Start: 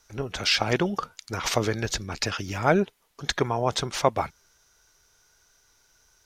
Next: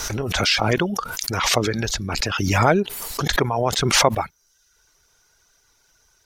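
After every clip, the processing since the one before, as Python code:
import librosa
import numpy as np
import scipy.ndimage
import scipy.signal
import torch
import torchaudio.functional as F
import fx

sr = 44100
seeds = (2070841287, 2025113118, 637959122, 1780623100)

y = fx.dereverb_blind(x, sr, rt60_s=0.63)
y = fx.pre_swell(y, sr, db_per_s=29.0)
y = F.gain(torch.from_numpy(y), 3.0).numpy()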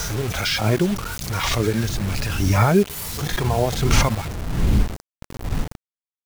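y = fx.dmg_wind(x, sr, seeds[0], corner_hz=110.0, level_db=-26.0)
y = fx.hpss(y, sr, part='percussive', gain_db=-16)
y = fx.quant_dither(y, sr, seeds[1], bits=6, dither='none')
y = F.gain(torch.from_numpy(y), 5.0).numpy()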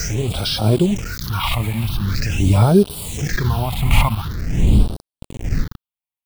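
y = fx.phaser_stages(x, sr, stages=6, low_hz=400.0, high_hz=2000.0, hz=0.45, feedback_pct=25)
y = F.gain(torch.from_numpy(y), 3.5).numpy()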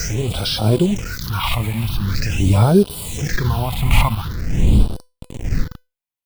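y = fx.comb_fb(x, sr, f0_hz=500.0, decay_s=0.27, harmonics='all', damping=0.0, mix_pct=60)
y = F.gain(torch.from_numpy(y), 7.5).numpy()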